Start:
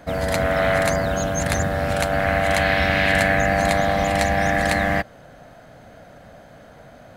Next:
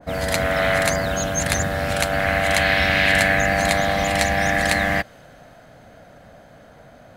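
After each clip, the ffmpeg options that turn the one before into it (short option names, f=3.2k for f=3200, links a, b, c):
-af "adynamicequalizer=threshold=0.02:dfrequency=1600:dqfactor=0.7:tfrequency=1600:tqfactor=0.7:attack=5:release=100:ratio=0.375:range=3:mode=boostabove:tftype=highshelf,volume=-1.5dB"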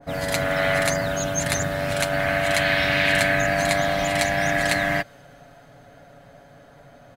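-af "aecho=1:1:7.1:0.59,volume=-3.5dB"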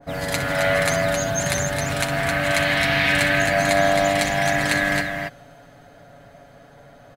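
-af "aecho=1:1:61.22|265.3:0.316|0.562"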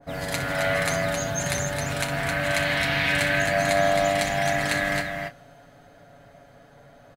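-filter_complex "[0:a]asplit=2[a][b];[b]adelay=29,volume=-12.5dB[c];[a][c]amix=inputs=2:normalize=0,volume=-4dB"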